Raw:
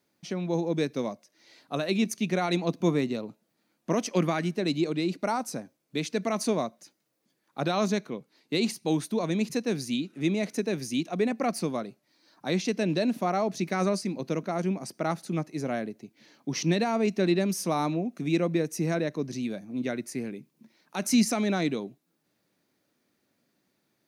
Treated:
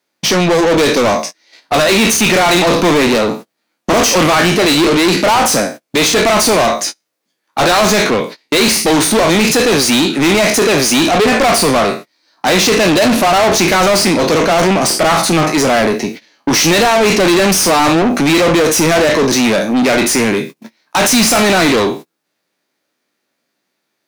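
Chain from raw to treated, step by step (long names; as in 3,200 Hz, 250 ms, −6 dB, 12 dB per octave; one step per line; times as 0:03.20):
peak hold with a decay on every bin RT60 0.32 s
noise gate −50 dBFS, range −30 dB
mid-hump overdrive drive 35 dB, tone 7,900 Hz, clips at −11.5 dBFS
level +7.5 dB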